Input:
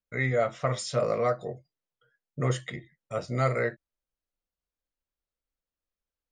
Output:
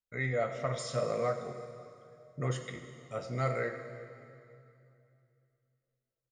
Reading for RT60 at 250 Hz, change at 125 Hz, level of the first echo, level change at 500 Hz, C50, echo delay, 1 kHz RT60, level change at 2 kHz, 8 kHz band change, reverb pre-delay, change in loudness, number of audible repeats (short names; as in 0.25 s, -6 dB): 3.0 s, -5.5 dB, -16.0 dB, -5.5 dB, 7.5 dB, 93 ms, 2.5 s, -5.5 dB, -5.5 dB, 9 ms, -6.0 dB, 1